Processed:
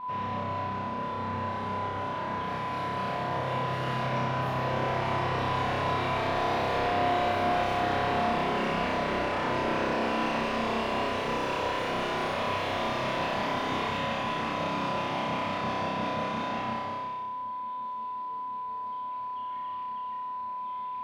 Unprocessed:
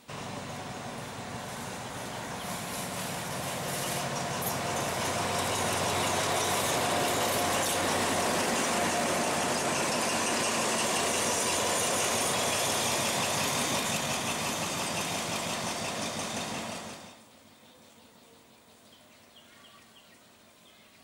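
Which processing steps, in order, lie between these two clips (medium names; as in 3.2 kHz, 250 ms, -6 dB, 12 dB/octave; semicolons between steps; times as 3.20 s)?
whistle 1 kHz -36 dBFS; wavefolder -25.5 dBFS; distance through air 350 m; flutter echo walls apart 5.3 m, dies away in 1.1 s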